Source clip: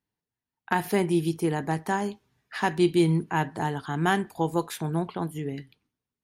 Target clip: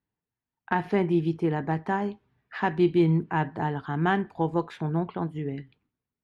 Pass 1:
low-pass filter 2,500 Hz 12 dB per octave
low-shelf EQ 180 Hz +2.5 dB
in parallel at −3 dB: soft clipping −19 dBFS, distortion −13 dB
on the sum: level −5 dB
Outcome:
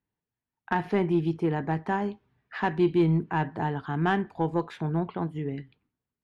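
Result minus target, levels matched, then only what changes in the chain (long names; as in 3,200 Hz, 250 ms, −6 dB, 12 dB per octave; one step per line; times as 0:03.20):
soft clipping: distortion +15 dB
change: soft clipping −8.5 dBFS, distortion −28 dB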